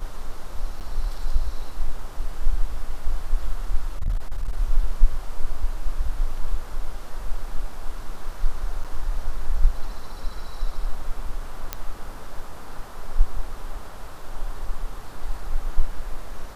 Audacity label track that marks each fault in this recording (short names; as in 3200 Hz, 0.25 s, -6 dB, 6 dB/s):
0.800000	0.810000	gap 7.9 ms
3.990000	4.570000	clipped -19 dBFS
8.840000	8.850000	gap 7 ms
11.730000	11.730000	pop -10 dBFS